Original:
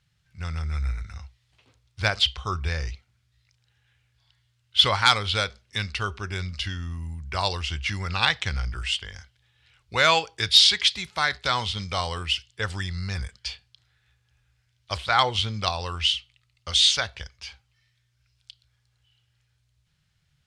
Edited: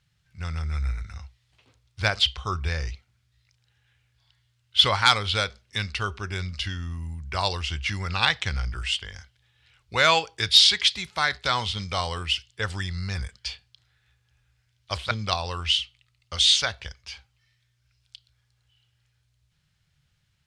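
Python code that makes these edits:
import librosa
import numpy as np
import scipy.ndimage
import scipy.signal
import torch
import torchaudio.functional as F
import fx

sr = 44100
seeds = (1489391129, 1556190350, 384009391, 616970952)

y = fx.edit(x, sr, fx.cut(start_s=15.11, length_s=0.35), tone=tone)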